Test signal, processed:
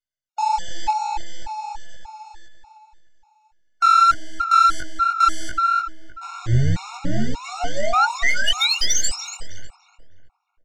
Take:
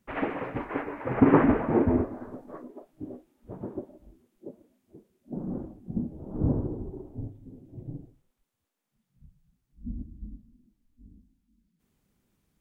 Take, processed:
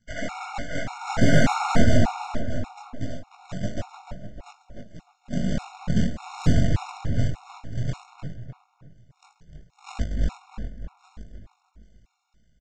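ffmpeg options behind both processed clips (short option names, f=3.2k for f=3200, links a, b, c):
-filter_complex "[0:a]aeval=exprs='if(lt(val(0),0),0.447*val(0),val(0))':c=same,equalizer=f=420:t=o:w=0.86:g=-11,bandreject=f=1k:w=28,aecho=1:1:1.4:0.72,dynaudnorm=f=150:g=13:m=7.5dB,aresample=16000,acrusher=bits=2:mode=log:mix=0:aa=0.000001,aresample=44100,asoftclip=type=tanh:threshold=-14dB,flanger=delay=17.5:depth=7:speed=1.6,asplit=2[a][b];[b]adelay=303,lowpass=f=2.4k:p=1,volume=-4dB,asplit=2[c][d];[d]adelay=303,lowpass=f=2.4k:p=1,volume=0.42,asplit=2[e][f];[f]adelay=303,lowpass=f=2.4k:p=1,volume=0.42,asplit=2[g][h];[h]adelay=303,lowpass=f=2.4k:p=1,volume=0.42,asplit=2[i][j];[j]adelay=303,lowpass=f=2.4k:p=1,volume=0.42[k];[c][e][g][i][k]amix=inputs=5:normalize=0[l];[a][l]amix=inputs=2:normalize=0,afftfilt=real='re*gt(sin(2*PI*1.7*pts/sr)*(1-2*mod(floor(b*sr/1024/720),2)),0)':imag='im*gt(sin(2*PI*1.7*pts/sr)*(1-2*mod(floor(b*sr/1024/720),2)),0)':win_size=1024:overlap=0.75,volume=8dB"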